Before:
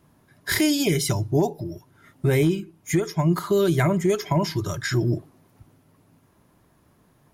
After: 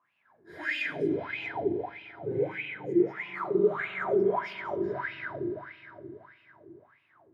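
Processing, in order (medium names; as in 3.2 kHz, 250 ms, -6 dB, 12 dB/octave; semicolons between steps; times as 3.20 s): phase randomisation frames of 50 ms; fifteen-band graphic EQ 100 Hz +5 dB, 400 Hz -4 dB, 6.3 kHz -3 dB; in parallel at -1 dB: compression, threshold -30 dBFS, peak gain reduction 16 dB; on the sum: spring tank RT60 3.8 s, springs 37/43 ms, chirp 50 ms, DRR -7 dB; wah-wah 1.6 Hz 340–2700 Hz, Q 10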